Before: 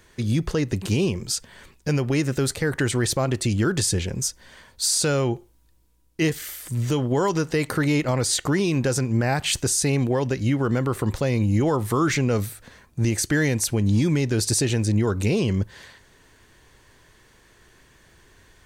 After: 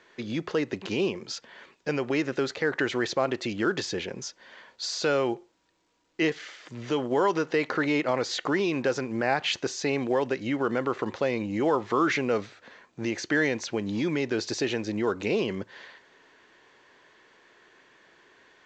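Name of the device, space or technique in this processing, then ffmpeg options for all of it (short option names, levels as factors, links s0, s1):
telephone: -af "highpass=330,lowpass=3500" -ar 16000 -c:a pcm_alaw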